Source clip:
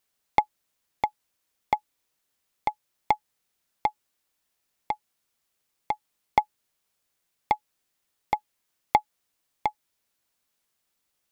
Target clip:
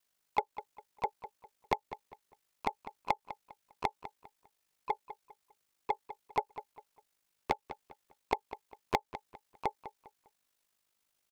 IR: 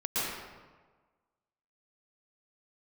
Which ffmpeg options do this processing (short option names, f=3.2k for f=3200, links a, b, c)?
-filter_complex "[0:a]aeval=exprs='val(0)*sin(2*PI*25*n/s)':c=same,acompressor=threshold=-27dB:ratio=4,lowshelf=f=380:g=-3,asplit=4[a][b][c][d];[b]asetrate=22050,aresample=44100,atempo=2,volume=-9dB[e];[c]asetrate=29433,aresample=44100,atempo=1.49831,volume=-17dB[f];[d]asetrate=52444,aresample=44100,atempo=0.840896,volume=-13dB[g];[a][e][f][g]amix=inputs=4:normalize=0,asplit=2[h][i];[i]adelay=201,lowpass=f=3.8k:p=1,volume=-13dB,asplit=2[j][k];[k]adelay=201,lowpass=f=3.8k:p=1,volume=0.31,asplit=2[l][m];[m]adelay=201,lowpass=f=3.8k:p=1,volume=0.31[n];[j][l][n]amix=inputs=3:normalize=0[o];[h][o]amix=inputs=2:normalize=0"